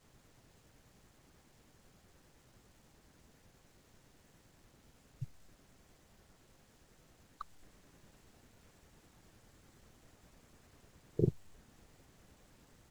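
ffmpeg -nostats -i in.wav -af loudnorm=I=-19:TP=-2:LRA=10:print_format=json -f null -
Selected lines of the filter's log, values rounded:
"input_i" : "-38.8",
"input_tp" : "-14.6",
"input_lra" : "21.2",
"input_thresh" : "-58.0",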